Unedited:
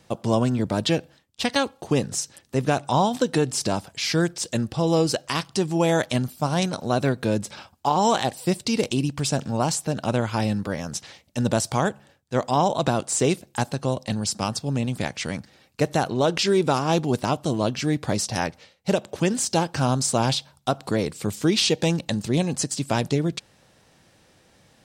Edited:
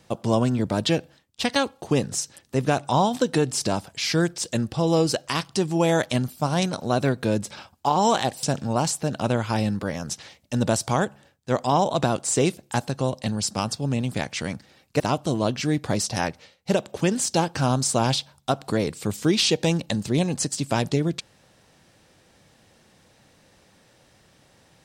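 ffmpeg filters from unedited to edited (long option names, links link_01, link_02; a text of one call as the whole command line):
ffmpeg -i in.wav -filter_complex "[0:a]asplit=3[link_01][link_02][link_03];[link_01]atrim=end=8.432[link_04];[link_02]atrim=start=9.268:end=15.842[link_05];[link_03]atrim=start=17.188[link_06];[link_04][link_05]acrossfade=duration=0.004:curve1=hsin:curve2=hsin[link_07];[link_07][link_06]acrossfade=duration=0.004:curve1=hsin:curve2=hsin" out.wav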